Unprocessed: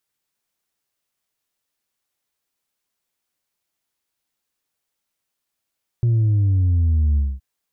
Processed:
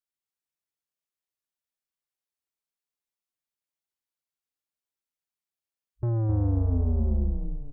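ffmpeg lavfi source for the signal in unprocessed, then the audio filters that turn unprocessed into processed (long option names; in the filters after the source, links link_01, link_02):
-f lavfi -i "aevalsrc='0.188*clip((1.37-t)/0.23,0,1)*tanh(1.26*sin(2*PI*120*1.37/log(65/120)*(exp(log(65/120)*t/1.37)-1)))/tanh(1.26)':duration=1.37:sample_rate=44100"
-filter_complex "[0:a]afwtdn=0.0251,asoftclip=type=tanh:threshold=-24dB,asplit=2[link_01][link_02];[link_02]asplit=5[link_03][link_04][link_05][link_06][link_07];[link_03]adelay=259,afreqshift=-38,volume=-4.5dB[link_08];[link_04]adelay=518,afreqshift=-76,volume=-12dB[link_09];[link_05]adelay=777,afreqshift=-114,volume=-19.6dB[link_10];[link_06]adelay=1036,afreqshift=-152,volume=-27.1dB[link_11];[link_07]adelay=1295,afreqshift=-190,volume=-34.6dB[link_12];[link_08][link_09][link_10][link_11][link_12]amix=inputs=5:normalize=0[link_13];[link_01][link_13]amix=inputs=2:normalize=0"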